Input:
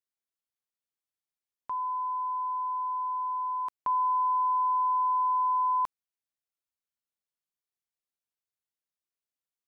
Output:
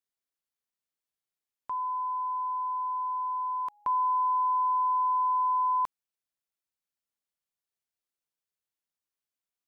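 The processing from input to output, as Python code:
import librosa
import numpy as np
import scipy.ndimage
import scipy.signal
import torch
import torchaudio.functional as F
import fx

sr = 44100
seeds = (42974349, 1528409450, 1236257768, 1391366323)

y = fx.dmg_tone(x, sr, hz=830.0, level_db=-59.0, at=(1.91, 4.59), fade=0.02)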